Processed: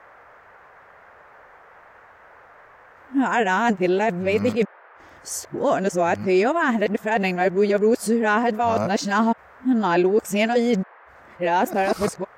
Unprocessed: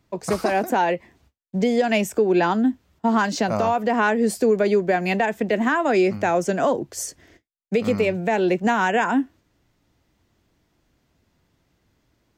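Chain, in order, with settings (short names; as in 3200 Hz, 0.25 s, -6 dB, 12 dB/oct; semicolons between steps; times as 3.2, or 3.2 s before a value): whole clip reversed; band noise 440–1800 Hz -49 dBFS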